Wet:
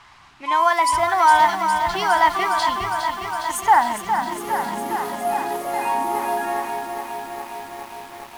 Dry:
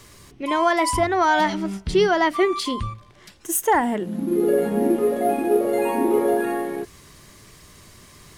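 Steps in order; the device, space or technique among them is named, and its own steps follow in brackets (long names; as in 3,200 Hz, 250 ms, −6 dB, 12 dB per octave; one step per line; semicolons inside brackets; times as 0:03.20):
cassette deck with a dynamic noise filter (white noise bed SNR 24 dB; low-pass that shuts in the quiet parts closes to 2,700 Hz, open at −15.5 dBFS)
low shelf with overshoot 640 Hz −9.5 dB, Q 3
feedback echo at a low word length 410 ms, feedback 80%, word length 7 bits, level −7 dB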